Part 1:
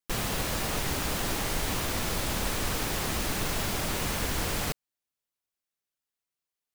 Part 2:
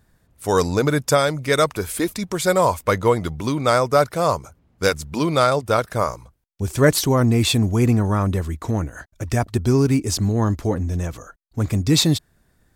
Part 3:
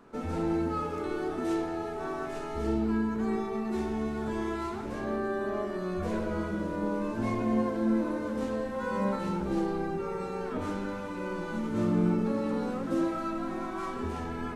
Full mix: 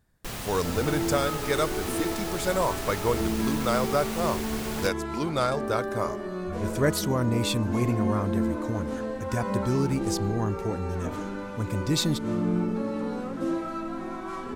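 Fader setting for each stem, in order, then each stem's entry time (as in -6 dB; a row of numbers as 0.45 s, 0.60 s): -5.0 dB, -9.0 dB, 0.0 dB; 0.15 s, 0.00 s, 0.50 s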